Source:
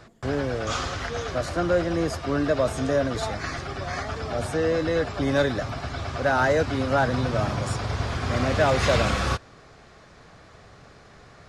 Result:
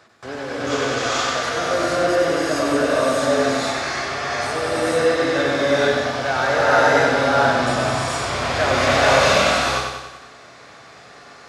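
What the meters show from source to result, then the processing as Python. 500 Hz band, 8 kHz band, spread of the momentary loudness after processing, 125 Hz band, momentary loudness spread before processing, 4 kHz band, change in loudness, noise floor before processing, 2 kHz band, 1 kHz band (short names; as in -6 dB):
+6.5 dB, +10.0 dB, 9 LU, -2.5 dB, 9 LU, +10.0 dB, +6.5 dB, -51 dBFS, +9.5 dB, +8.5 dB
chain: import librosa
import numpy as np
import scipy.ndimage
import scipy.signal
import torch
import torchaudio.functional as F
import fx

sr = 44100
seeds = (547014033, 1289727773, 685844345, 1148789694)

y = fx.highpass(x, sr, hz=550.0, slope=6)
y = fx.echo_feedback(y, sr, ms=94, feedback_pct=56, wet_db=-4.5)
y = fx.rev_gated(y, sr, seeds[0], gate_ms=490, shape='rising', drr_db=-7.5)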